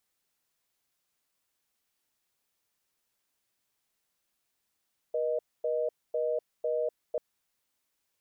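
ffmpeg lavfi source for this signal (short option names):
-f lavfi -i "aevalsrc='0.0335*(sin(2*PI*480*t)+sin(2*PI*620*t))*clip(min(mod(t,0.5),0.25-mod(t,0.5))/0.005,0,1)':d=2.04:s=44100"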